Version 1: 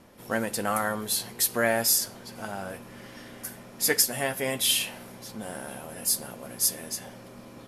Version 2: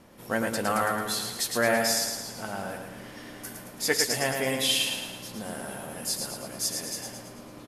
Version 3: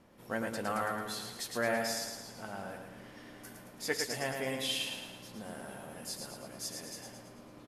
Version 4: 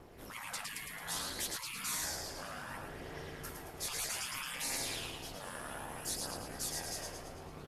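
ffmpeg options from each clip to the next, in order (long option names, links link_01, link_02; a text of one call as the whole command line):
ffmpeg -i in.wav -filter_complex "[0:a]acrossover=split=8000[link_01][link_02];[link_02]acompressor=threshold=-37dB:ratio=4:attack=1:release=60[link_03];[link_01][link_03]amix=inputs=2:normalize=0,asplit=2[link_04][link_05];[link_05]aecho=0:1:110|220|330|440|550|660|770:0.562|0.292|0.152|0.0791|0.0411|0.0214|0.0111[link_06];[link_04][link_06]amix=inputs=2:normalize=0" out.wav
ffmpeg -i in.wav -af "highshelf=frequency=5100:gain=-6,volume=-7.5dB" out.wav
ffmpeg -i in.wav -af "aeval=exprs='val(0)*sin(2*PI*150*n/s)':channel_layout=same,afftfilt=real='re*lt(hypot(re,im),0.0141)':imag='im*lt(hypot(re,im),0.0141)':win_size=1024:overlap=0.75,aphaser=in_gain=1:out_gain=1:delay=1.9:decay=0.25:speed=0.63:type=triangular,volume=7.5dB" out.wav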